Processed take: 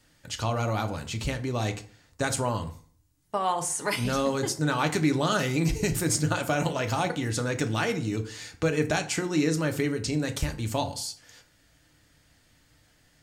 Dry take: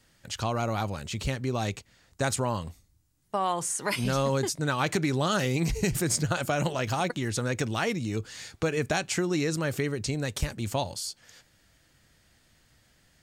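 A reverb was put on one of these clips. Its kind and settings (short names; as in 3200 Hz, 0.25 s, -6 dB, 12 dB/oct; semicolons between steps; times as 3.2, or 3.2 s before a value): FDN reverb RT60 0.48 s, low-frequency decay 1.05×, high-frequency decay 0.65×, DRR 5.5 dB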